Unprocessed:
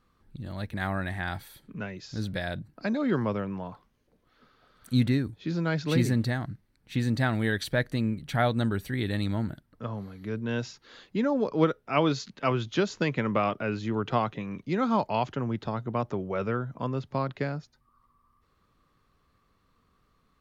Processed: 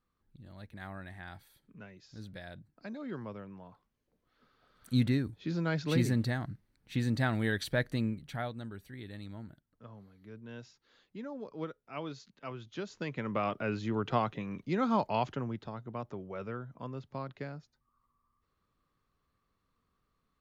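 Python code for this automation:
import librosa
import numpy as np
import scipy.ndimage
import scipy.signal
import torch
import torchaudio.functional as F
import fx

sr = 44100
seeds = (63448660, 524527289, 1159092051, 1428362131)

y = fx.gain(x, sr, db=fx.line((3.65, -14.0), (4.93, -4.0), (8.03, -4.0), (8.6, -16.0), (12.61, -16.0), (13.64, -3.5), (15.3, -3.5), (15.7, -10.5)))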